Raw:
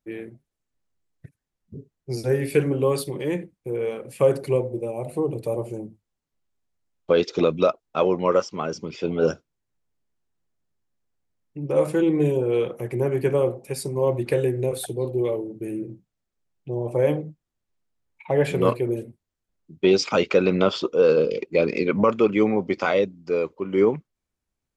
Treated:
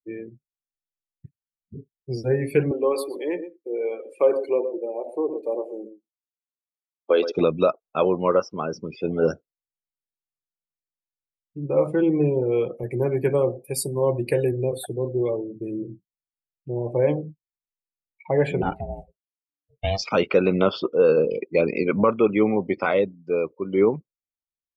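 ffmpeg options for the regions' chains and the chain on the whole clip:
-filter_complex "[0:a]asettb=1/sr,asplit=3[a][b][c];[a]atrim=end=2.714[d];[b]atrim=start=2.71:end=7.32,asetpts=PTS-STARTPTS,afade=t=in:d=0.004:c=qsin,afade=t=out:st=4.606:d=0.004:c=qsin,highpass=f=290:w=0.5412,highpass=f=290:w=1.3066,aecho=1:1:121:0.299,atrim=end_sample=203301[e];[c]atrim=start=7.316[f];[d][e]acrossfade=d=0.004:c1=hsin:c2=qsin[g];[g][f]acrossfade=d=0.004:c1=qsin:c2=hsin,asettb=1/sr,asplit=3[h][i][j];[h]atrim=end=12.834[k];[i]atrim=start=12.83:end=14.52,asetpts=PTS-STARTPTS,afade=t=in:d=0.004:c=qsin,afade=t=out:st=1.686:d=0.004:c=qsin,highpass=54,highshelf=f=5k:g=9.5[l];[j]atrim=start=14.516[m];[k][l]acrossfade=d=0.004:c1=hsin:c2=qsin[n];[n][m]acrossfade=d=0.004:c1=qsin:c2=hsin,asettb=1/sr,asplit=3[o][p][q];[o]atrim=end=18.624[r];[p]atrim=start=18.62:end=20.03,asetpts=PTS-STARTPTS,afade=t=in:d=0.004:c=qsin,afade=t=out:st=1.406:d=0.004:c=qsin,lowshelf=f=430:g=-7.5,aeval=exprs='val(0)*sin(2*PI*290*n/s)':c=same,asoftclip=type=hard:threshold=-13dB[s];[q]atrim=start=20.026[t];[r][s]acrossfade=d=0.004:c1=hsin:c2=qsin[u];[u][t]acrossfade=d=0.004:c1=qsin:c2=hsin,afftdn=nr=24:nf=-37,adynamicequalizer=threshold=0.00891:dfrequency=3300:dqfactor=0.7:tfrequency=3300:tqfactor=0.7:attack=5:release=100:ratio=0.375:range=2.5:mode=cutabove:tftype=highshelf"

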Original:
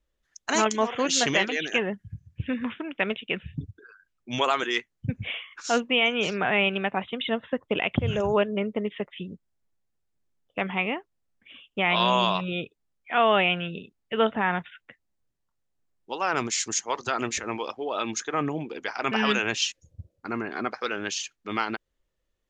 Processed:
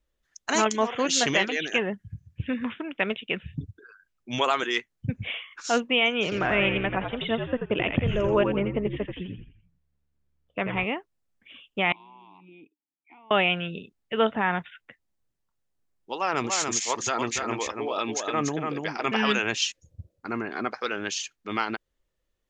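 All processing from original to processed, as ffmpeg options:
-filter_complex "[0:a]asettb=1/sr,asplit=3[a][b][c];[a]atrim=end=6.234[d];[b]atrim=start=6.23:end=10.84,asetpts=PTS-STARTPTS,afade=t=in:d=0.004:c=qsin,afade=t=out:st=4.606:d=0.004:c=qsin,aemphasis=mode=reproduction:type=50fm,bandreject=f=810:w=11,asplit=6[e][f][g][h][i][j];[f]adelay=85,afreqshift=-71,volume=-6dB[k];[g]adelay=170,afreqshift=-142,volume=-13.3dB[l];[h]adelay=255,afreqshift=-213,volume=-20.7dB[m];[i]adelay=340,afreqshift=-284,volume=-28dB[n];[j]adelay=425,afreqshift=-355,volume=-35.3dB[o];[e][k][l][m][n][o]amix=inputs=6:normalize=0,atrim=end_sample=203301[p];[c]atrim=start=10.836[q];[d][p]acrossfade=d=0.004:c1=hsin:c2=qsin[r];[r][q]acrossfade=d=0.004:c1=qsin:c2=hsin,asettb=1/sr,asplit=3[s][t][u];[s]atrim=end=11.924[v];[t]atrim=start=11.92:end=13.31,asetpts=PTS-STARTPTS,afade=t=in:d=0.004:c=qsin,afade=t=out:st=1.386:d=0.004:c=qsin,aemphasis=mode=reproduction:type=50fm,acompressor=threshold=-33dB:ratio=6:attack=3.2:release=140:knee=1:detection=peak,asplit=3[w][x][y];[w]bandpass=f=300:t=q:w=8,volume=0dB[z];[x]bandpass=f=870:t=q:w=8,volume=-6dB[aa];[y]bandpass=f=2.24k:t=q:w=8,volume=-9dB[ab];[z][aa][ab]amix=inputs=3:normalize=0[ac];[u]atrim=start=13.306[ad];[v][ac]acrossfade=d=0.004:c1=hsin:c2=qsin[ae];[ae][ad]acrossfade=d=0.004:c1=qsin:c2=hsin,asettb=1/sr,asplit=3[af][ag][ah];[af]atrim=end=16.154[ai];[ag]atrim=start=16.15:end=19.17,asetpts=PTS-STARTPTS,afade=t=in:d=0.004:c=qsin,afade=t=out:st=3.016:d=0.004:c=qsin,bandreject=f=1.5k:w=15,aecho=1:1:289:0.596,atrim=end_sample=133182[aj];[ah]atrim=start=19.166[ak];[ai][aj]acrossfade=d=0.004:c1=hsin:c2=qsin[al];[al][ak]acrossfade=d=0.004:c1=qsin:c2=hsin"

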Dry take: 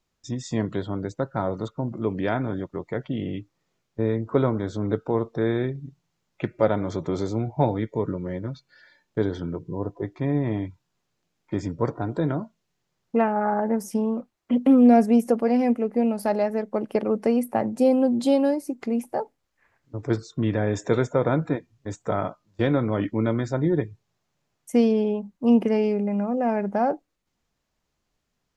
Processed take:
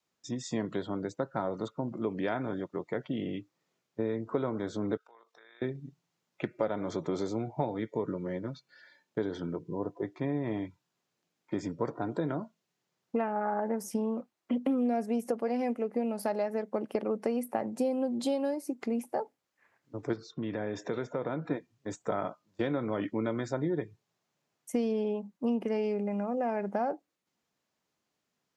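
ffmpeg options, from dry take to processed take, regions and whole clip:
-filter_complex "[0:a]asettb=1/sr,asplit=3[a][b][c];[a]atrim=end=4.974[d];[b]atrim=start=4.97:end=5.62,asetpts=PTS-STARTPTS,afade=t=in:d=0.004:c=qsin,afade=t=out:st=0.646:d=0.004:c=qsin,highpass=1.4k,tremolo=f=50:d=0.4,acompressor=threshold=-53dB:ratio=4:attack=3.2:release=140:knee=1:detection=peak[e];[c]atrim=start=5.616[f];[d][e]acrossfade=d=0.004:c1=hsin:c2=qsin[g];[g][f]acrossfade=d=0.004:c1=qsin:c2=hsin,asettb=1/sr,asplit=3[h][i][j];[h]atrim=end=20.134[k];[i]atrim=start=20.13:end=21.51,asetpts=PTS-STARTPTS,afade=t=in:d=0.004:c=qsin,afade=t=out:st=1.376:d=0.004:c=qsin,lowpass=f=5.5k:w=0.5412,lowpass=f=5.5k:w=1.3066,acompressor=threshold=-27dB:ratio=2.5:attack=3.2:release=140:knee=1:detection=peak[l];[j]atrim=start=21.506[m];[k][l]acrossfade=d=0.004:c1=hsin:c2=qsin[n];[n][m]acrossfade=d=0.004:c1=qsin:c2=hsin,adynamicequalizer=threshold=0.0316:dfrequency=240:dqfactor=1.5:tfrequency=240:tqfactor=1.5:attack=5:release=100:ratio=0.375:range=2:mode=cutabove:tftype=bell,highpass=170,acompressor=threshold=-24dB:ratio=4,volume=-3dB"

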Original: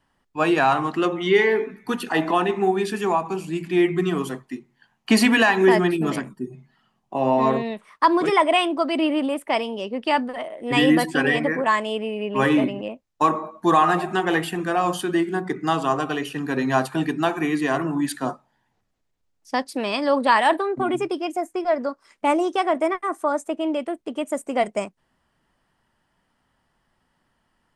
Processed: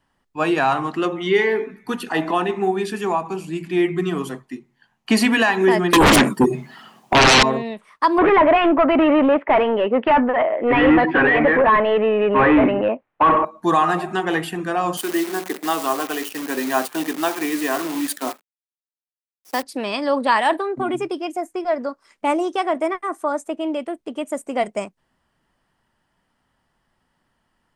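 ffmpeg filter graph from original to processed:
-filter_complex "[0:a]asettb=1/sr,asplit=3[a][b][c];[a]atrim=end=5.934[d];[b]atrim=start=5.93:end=7.43,asetpts=PTS-STARTPTS,afade=t=in:d=0.004:c=qsin,afade=t=out:st=1.496:d=0.004:c=qsin,highpass=230,highshelf=f=11k:g=4.5,aeval=exprs='0.376*sin(PI/2*7.94*val(0)/0.376)':c=same[e];[c]atrim=start=7.426[f];[d][e]acrossfade=d=0.004:c1=hsin:c2=qsin[g];[g][f]acrossfade=d=0.004:c1=qsin:c2=hsin,asettb=1/sr,asplit=3[h][i][j];[h]atrim=end=8.184[k];[i]atrim=start=8.18:end=13.45,asetpts=PTS-STARTPTS,afade=t=in:d=0.004:c=qsin,afade=t=out:st=5.266:d=0.004:c=qsin,asplit=2[l][m];[m]highpass=f=720:p=1,volume=25dB,asoftclip=type=tanh:threshold=-5.5dB[n];[l][n]amix=inputs=2:normalize=0,lowpass=f=1.6k:p=1,volume=-6dB,lowpass=f=2.5k:w=0.5412,lowpass=f=2.5k:w=1.3066[o];[j]atrim=start=13.446[p];[k][o]acrossfade=d=0.004:c1=hsin:c2=qsin[q];[q][p]acrossfade=d=0.004:c1=qsin:c2=hsin,asettb=1/sr,asplit=3[r][s][t];[r]atrim=end=14.974[u];[s]atrim=start=14.97:end=19.63,asetpts=PTS-STARTPTS,afade=t=in:d=0.004:c=qsin,afade=t=out:st=4.656:d=0.004:c=qsin,acrusher=bits=6:dc=4:mix=0:aa=0.000001,highpass=f=240:w=0.5412,highpass=f=240:w=1.3066,highshelf=f=9k:g=9[v];[t]atrim=start=19.626[w];[u][v]acrossfade=d=0.004:c1=hsin:c2=qsin[x];[x][w]acrossfade=d=0.004:c1=qsin:c2=hsin"

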